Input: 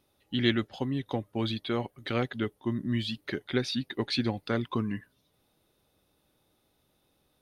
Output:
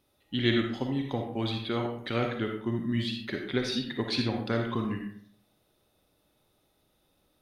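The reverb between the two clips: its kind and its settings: algorithmic reverb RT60 0.61 s, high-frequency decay 0.6×, pre-delay 15 ms, DRR 2 dB; trim -1 dB

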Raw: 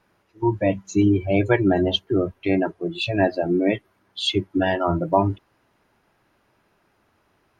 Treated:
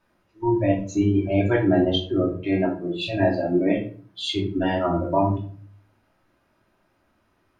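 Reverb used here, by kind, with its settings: simulated room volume 370 m³, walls furnished, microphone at 2.7 m; trim -7 dB

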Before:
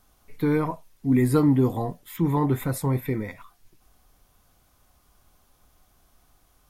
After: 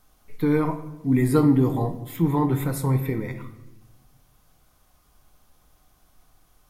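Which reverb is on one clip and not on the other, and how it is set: simulated room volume 430 m³, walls mixed, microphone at 0.51 m

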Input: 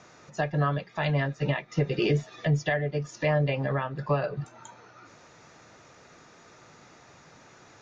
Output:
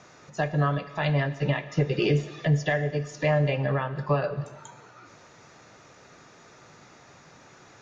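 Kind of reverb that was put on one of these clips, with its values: gated-style reverb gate 430 ms falling, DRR 11.5 dB; trim +1 dB

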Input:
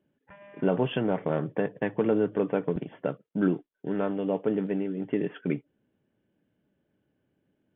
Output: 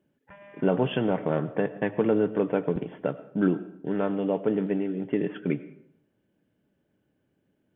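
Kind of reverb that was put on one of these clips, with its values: algorithmic reverb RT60 0.73 s, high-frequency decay 0.65×, pre-delay 55 ms, DRR 15 dB; trim +1.5 dB

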